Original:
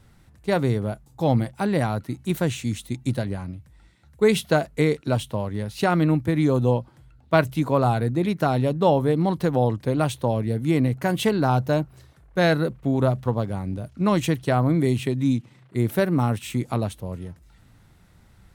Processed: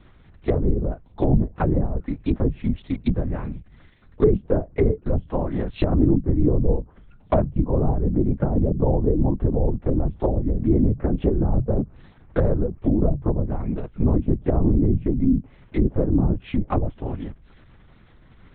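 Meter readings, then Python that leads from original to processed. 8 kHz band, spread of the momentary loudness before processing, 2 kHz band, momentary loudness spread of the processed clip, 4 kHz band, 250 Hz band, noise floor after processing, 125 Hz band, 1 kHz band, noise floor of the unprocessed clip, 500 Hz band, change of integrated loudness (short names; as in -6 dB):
under -40 dB, 9 LU, -13.0 dB, 8 LU, under -10 dB, +1.0 dB, -51 dBFS, +1.0 dB, -7.0 dB, -54 dBFS, -1.5 dB, 0.0 dB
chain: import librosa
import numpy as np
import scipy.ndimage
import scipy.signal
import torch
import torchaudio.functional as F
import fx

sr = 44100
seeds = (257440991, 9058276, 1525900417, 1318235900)

y = fx.env_lowpass_down(x, sr, base_hz=410.0, full_db=-19.0)
y = fx.lpc_vocoder(y, sr, seeds[0], excitation='whisper', order=8)
y = y * 10.0 ** (3.5 / 20.0)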